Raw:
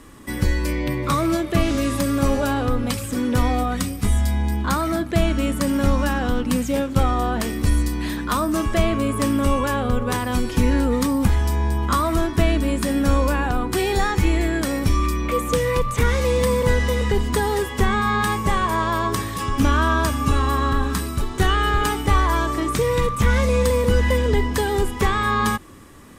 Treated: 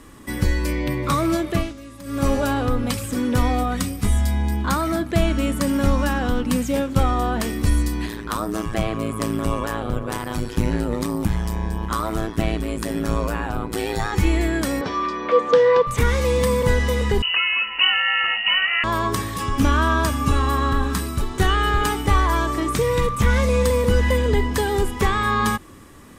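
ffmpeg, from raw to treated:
ffmpeg -i in.wav -filter_complex "[0:a]asplit=3[link_01][link_02][link_03];[link_01]afade=type=out:start_time=8.05:duration=0.02[link_04];[link_02]tremolo=f=110:d=0.974,afade=type=in:start_time=8.05:duration=0.02,afade=type=out:start_time=14.12:duration=0.02[link_05];[link_03]afade=type=in:start_time=14.12:duration=0.02[link_06];[link_04][link_05][link_06]amix=inputs=3:normalize=0,asettb=1/sr,asplit=3[link_07][link_08][link_09];[link_07]atrim=end=14.814[link_10];[link_08]atrim=start=14.81:end=15.87,asetpts=PTS-STARTPTS,afade=type=in:duration=0.004:curve=qsin,afade=type=out:start_time=1.056:duration=0.004:curve=qsin,highpass=280,equalizer=frequency=320:width_type=q:width=4:gain=-4,equalizer=frequency=470:width_type=q:width=4:gain=9,equalizer=frequency=710:width_type=q:width=4:gain=6,equalizer=frequency=1000:width_type=q:width=4:gain=6,equalizer=frequency=1600:width_type=q:width=4:gain=7,equalizer=frequency=2400:width_type=q:width=4:gain=-5,lowpass=frequency=4800:width=0.5412,lowpass=frequency=4800:width=1.3066[link_11];[link_09]atrim=start=15.866[link_12];[link_10][link_11]acrossfade=duration=0.004:curve1=hsin:curve2=qsin[link_13];[link_13][link_12]acrossfade=duration=0.004:curve1=qsin:curve2=hsin,asettb=1/sr,asplit=3[link_14][link_15][link_16];[link_14]atrim=end=17.224[link_17];[link_15]atrim=start=17.22:end=18.84,asetpts=PTS-STARTPTS,afade=type=in:duration=0.004:curve=qsin,afade=type=out:start_time=1.616:duration=0.004:curve=qsin,lowpass=frequency=2600:width_type=q:width=0.5098,lowpass=frequency=2600:width_type=q:width=0.6013,lowpass=frequency=2600:width_type=q:width=0.9,lowpass=frequency=2600:width_type=q:width=2.563,afreqshift=-3000[link_18];[link_16]atrim=start=18.836[link_19];[link_17][link_18]acrossfade=duration=0.004:curve1=hsin:curve2=qsin[link_20];[link_20][link_19]acrossfade=duration=0.004:curve1=qsin:curve2=hsin,asettb=1/sr,asplit=3[link_21][link_22][link_23];[link_21]atrim=end=24.114[link_24];[link_22]atrim=start=24.11:end=24.51,asetpts=PTS-STARTPTS,afade=type=in:duration=0.004:curve=qsin,afade=type=out:start_time=0.396:duration=0.004:curve=qsin,bandreject=frequency=5500:width=12[link_25];[link_23]atrim=start=24.506[link_26];[link_24][link_25]acrossfade=duration=0.004:curve1=hsin:curve2=qsin[link_27];[link_27][link_26]acrossfade=duration=0.004:curve1=qsin:curve2=hsin,asplit=3[link_28][link_29][link_30];[link_28]atrim=end=1.74,asetpts=PTS-STARTPTS,afade=type=out:start_time=1.5:duration=0.24:silence=0.133352[link_31];[link_29]atrim=start=1.74:end=2.03,asetpts=PTS-STARTPTS,volume=-17.5dB[link_32];[link_30]atrim=start=2.03,asetpts=PTS-STARTPTS,afade=type=in:duration=0.24:silence=0.133352[link_33];[link_31][link_32][link_33]concat=n=3:v=0:a=1" out.wav

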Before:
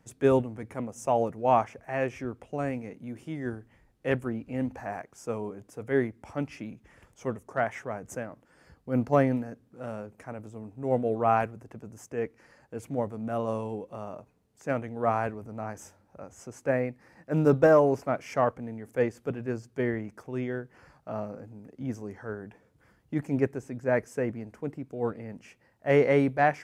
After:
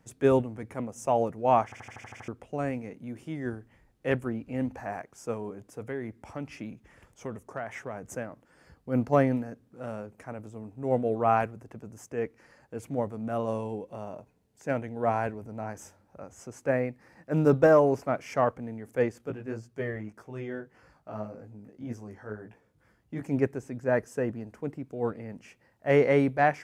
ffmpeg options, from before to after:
ffmpeg -i in.wav -filter_complex "[0:a]asettb=1/sr,asplit=3[link_01][link_02][link_03];[link_01]atrim=end=5.334[link_04];[link_02]atrim=start=5.33:end=8.08,asetpts=PTS-STARTPTS,afade=type=in:duration=0.004:curve=qsin,afade=type=out:start_time=2.746:duration=0.004:curve=qsin,acompressor=threshold=-30dB:ratio=6:attack=3.2:release=140:knee=1:detection=peak[link_05];[link_03]atrim=start=8.076[link_06];[link_04][link_05]acrossfade=duration=0.004:curve1=hsin:curve2=qsin[link_07];[link_07][link_06]acrossfade=duration=0.004:curve1=qsin:curve2=hsin,asettb=1/sr,asplit=3[link_08][link_09][link_10];[link_08]atrim=end=13.434[link_11];[link_09]atrim=start=13.43:end=15.71,asetpts=PTS-STARTPTS,afade=type=in:duration=0.004:curve=qsin,afade=type=out:start_time=2.276:duration=0.004:curve=qsin,bandreject=frequency=1200:width=7[link_12];[link_10]atrim=start=15.706[link_13];[link_11][link_12]acrossfade=duration=0.004:curve1=hsin:curve2=qsin[link_14];[link_14][link_13]acrossfade=duration=0.004:curve1=qsin:curve2=hsin,asettb=1/sr,asplit=3[link_15][link_16][link_17];[link_15]atrim=end=19.184[link_18];[link_16]atrim=start=19.18:end=23.23,asetpts=PTS-STARTPTS,afade=type=in:duration=0.004:curve=qsin,afade=type=out:start_time=4.046:duration=0.004:curve=qsin,flanger=delay=17:depth=2.5:speed=1.8[link_19];[link_17]atrim=start=23.226[link_20];[link_18][link_19]acrossfade=duration=0.004:curve1=hsin:curve2=qsin[link_21];[link_21][link_20]acrossfade=duration=0.004:curve1=qsin:curve2=hsin,asettb=1/sr,asplit=3[link_22][link_23][link_24];[link_22]atrim=end=23.874[link_25];[link_23]atrim=start=23.87:end=24.53,asetpts=PTS-STARTPTS,afade=type=in:duration=0.004:curve=qsin,afade=type=out:start_time=0.656:duration=0.004:curve=qsin,bandreject=frequency=2200:width=6.5[link_26];[link_24]atrim=start=24.526[link_27];[link_25][link_26]acrossfade=duration=0.004:curve1=hsin:curve2=qsin[link_28];[link_28][link_27]acrossfade=duration=0.004:curve1=qsin:curve2=hsin,asplit=9[link_29][link_30][link_31][link_32][link_33][link_34][link_35][link_36][link_37];[link_29]atrim=end=1.722[link_38];[link_30]atrim=start=1.638:end=1.722[link_39];[link_31]atrim=start=1.638:end=1.722[link_40];[link_32]atrim=start=1.638:end=1.722[link_41];[link_33]atrim=start=1.638:end=1.722[link_42];[link_34]atrim=start=1.638:end=1.722[link_43];[link_35]atrim=start=1.638:end=1.722[link_44];[link_36]atrim=start=1.638:end=1.722[link_45];[link_37]atrim=start=2.278[link_46];[link_38][link_39]acrossfade=duration=0.004:curve1=hsin:curve2=hsin[link_47];[link_47][link_40]acrossfade=duration=0.004:curve1=hsin:curve2=hsin[link_48];[link_48][link_41]acrossfade=duration=0.004:curve1=hsin:curve2=hsin[link_49];[link_49][link_42]acrossfade=duration=0.004:curve1=hsin:curve2=hsin[link_50];[link_50][link_43]acrossfade=duration=0.004:curve1=hsin:curve2=hsin[link_51];[link_51][link_44]acrossfade=duration=0.004:curve1=hsin:curve2=hsin[link_52];[link_52][link_45]acrossfade=duration=0.004:curve1=hsin:curve2=hsin[link_53];[link_53][link_46]acrossfade=duration=0.004:curve1=hsin:curve2=hsin" out.wav

